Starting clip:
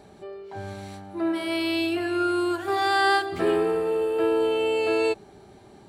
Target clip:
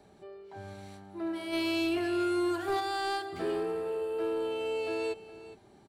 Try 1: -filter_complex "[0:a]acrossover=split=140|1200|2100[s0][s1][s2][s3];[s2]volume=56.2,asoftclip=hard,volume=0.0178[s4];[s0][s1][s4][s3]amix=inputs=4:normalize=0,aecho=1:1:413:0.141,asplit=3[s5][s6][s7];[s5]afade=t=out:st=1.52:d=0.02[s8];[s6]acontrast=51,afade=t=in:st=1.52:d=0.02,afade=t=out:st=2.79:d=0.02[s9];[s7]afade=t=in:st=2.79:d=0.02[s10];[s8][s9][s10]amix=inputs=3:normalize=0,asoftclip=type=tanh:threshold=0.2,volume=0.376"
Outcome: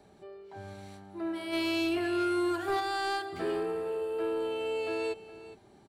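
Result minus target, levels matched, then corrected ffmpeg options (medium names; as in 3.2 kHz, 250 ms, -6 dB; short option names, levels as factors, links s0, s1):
overload inside the chain: distortion -5 dB
-filter_complex "[0:a]acrossover=split=140|1200|2100[s0][s1][s2][s3];[s2]volume=150,asoftclip=hard,volume=0.00668[s4];[s0][s1][s4][s3]amix=inputs=4:normalize=0,aecho=1:1:413:0.141,asplit=3[s5][s6][s7];[s5]afade=t=out:st=1.52:d=0.02[s8];[s6]acontrast=51,afade=t=in:st=1.52:d=0.02,afade=t=out:st=2.79:d=0.02[s9];[s7]afade=t=in:st=2.79:d=0.02[s10];[s8][s9][s10]amix=inputs=3:normalize=0,asoftclip=type=tanh:threshold=0.2,volume=0.376"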